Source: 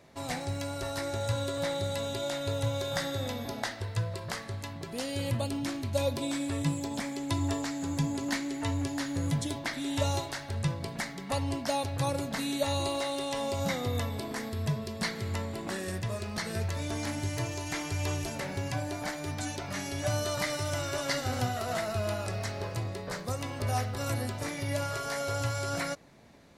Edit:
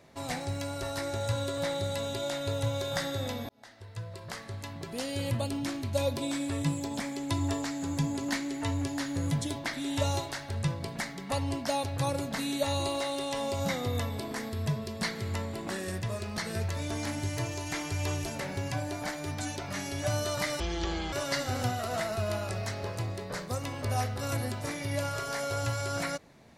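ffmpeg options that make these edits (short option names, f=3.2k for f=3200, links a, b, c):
-filter_complex "[0:a]asplit=4[a][b][c][d];[a]atrim=end=3.49,asetpts=PTS-STARTPTS,afade=t=out:st=3.486:d=0.004:c=hsin[e];[b]atrim=start=3.49:end=20.604,asetpts=PTS-STARTPTS,afade=t=in:d=1.33[f];[c]atrim=start=20.6:end=20.9,asetpts=PTS-STARTPTS,asetrate=25137,aresample=44100[g];[d]atrim=start=20.896[h];[e][f]concat=n=2:v=0:a=1[i];[i][g]acrossfade=d=0.004:c1=hsin:c2=hsin[j];[j][h]acrossfade=d=0.004:c1=hsin:c2=hsin"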